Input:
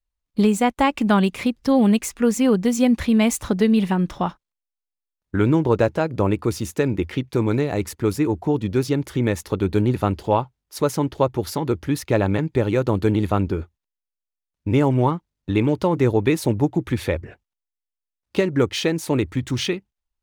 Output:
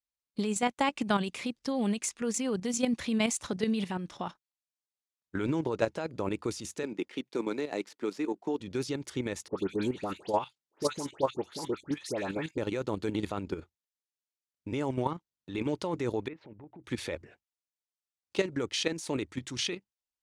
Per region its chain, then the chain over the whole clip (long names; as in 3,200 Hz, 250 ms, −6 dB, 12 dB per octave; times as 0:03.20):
0:06.83–0:08.60: running median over 5 samples + high-pass filter 200 Hz 24 dB per octave + transient designer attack +3 dB, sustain −5 dB
0:09.48–0:12.58: high-pass filter 140 Hz + all-pass dispersion highs, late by 101 ms, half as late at 1,800 Hz
0:16.28–0:16.84: low-pass filter 2,300 Hz 24 dB per octave + downward compressor 4 to 1, threshold −33 dBFS
whole clip: meter weighting curve ITU-R 468; output level in coarse steps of 10 dB; tilt shelving filter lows +9 dB, about 680 Hz; level −3 dB